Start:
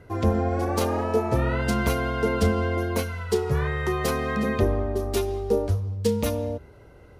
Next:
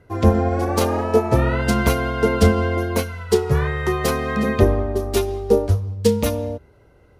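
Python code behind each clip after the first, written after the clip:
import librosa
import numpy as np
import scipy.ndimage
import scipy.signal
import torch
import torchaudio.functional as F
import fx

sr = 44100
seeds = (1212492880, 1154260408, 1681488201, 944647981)

y = fx.upward_expand(x, sr, threshold_db=-40.0, expansion=1.5)
y = y * librosa.db_to_amplitude(8.0)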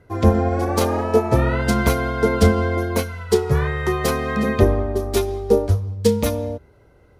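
y = fx.notch(x, sr, hz=2800.0, q=22.0)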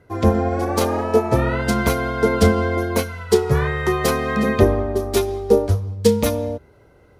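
y = fx.low_shelf(x, sr, hz=71.0, db=-7.0)
y = fx.rider(y, sr, range_db=10, speed_s=2.0)
y = y * librosa.db_to_amplitude(1.0)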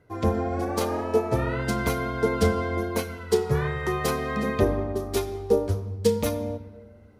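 y = fx.room_shoebox(x, sr, seeds[0], volume_m3=1300.0, walls='mixed', distance_m=0.46)
y = y * librosa.db_to_amplitude(-7.0)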